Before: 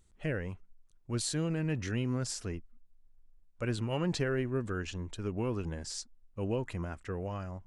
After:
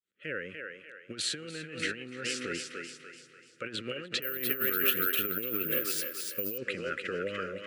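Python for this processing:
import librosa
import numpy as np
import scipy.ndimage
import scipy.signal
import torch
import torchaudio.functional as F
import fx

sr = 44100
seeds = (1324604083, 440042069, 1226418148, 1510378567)

y = fx.fade_in_head(x, sr, length_s=0.82)
y = scipy.signal.sosfilt(scipy.signal.ellip(3, 1.0, 50, [550.0, 1300.0], 'bandstop', fs=sr, output='sos'), y)
y = fx.high_shelf_res(y, sr, hz=4100.0, db=-8.5, q=1.5)
y = fx.echo_thinned(y, sr, ms=293, feedback_pct=44, hz=460.0, wet_db=-4.0)
y = fx.rev_plate(y, sr, seeds[0], rt60_s=4.4, hf_ratio=0.8, predelay_ms=0, drr_db=19.5)
y = fx.over_compress(y, sr, threshold_db=-36.0, ratio=-0.5)
y = fx.weighting(y, sr, curve='A')
y = fx.resample_bad(y, sr, factor=3, down='none', up='zero_stuff', at=(4.22, 6.58))
y = scipy.signal.sosfilt(scipy.signal.butter(2, 110.0, 'highpass', fs=sr, output='sos'), y)
y = y * librosa.db_to_amplitude(7.5)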